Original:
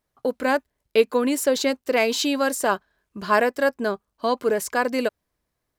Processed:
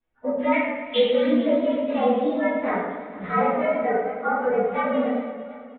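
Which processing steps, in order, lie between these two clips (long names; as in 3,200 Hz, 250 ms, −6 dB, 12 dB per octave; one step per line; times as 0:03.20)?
partials spread apart or drawn together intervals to 115%
treble cut that deepens with the level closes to 1,300 Hz, closed at −21 dBFS
0:00.52–0:01.27: high shelf with overshoot 1,700 Hz +12 dB, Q 3
0:03.79–0:04.41: comb filter 2.7 ms, depth 55%
feedback echo with a long and a short gap by turns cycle 753 ms, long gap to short 1.5 to 1, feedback 31%, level −18.5 dB
rectangular room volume 170 cubic metres, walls mixed, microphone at 2.4 metres
downsampling to 8,000 Hz
feedback echo with a swinging delay time 109 ms, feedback 60%, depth 88 cents, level −9 dB
level −6.5 dB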